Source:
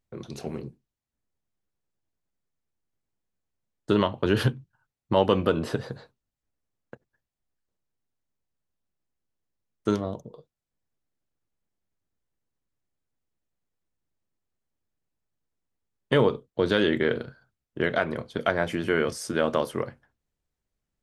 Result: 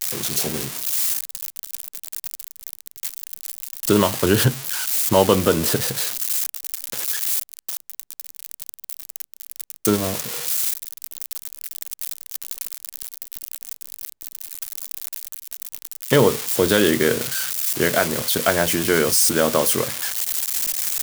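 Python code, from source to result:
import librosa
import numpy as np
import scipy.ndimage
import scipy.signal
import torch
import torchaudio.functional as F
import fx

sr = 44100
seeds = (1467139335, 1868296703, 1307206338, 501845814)

y = x + 0.5 * 10.0 ** (-17.0 / 20.0) * np.diff(np.sign(x), prepend=np.sign(x[:1]))
y = F.gain(torch.from_numpy(y), 5.5).numpy()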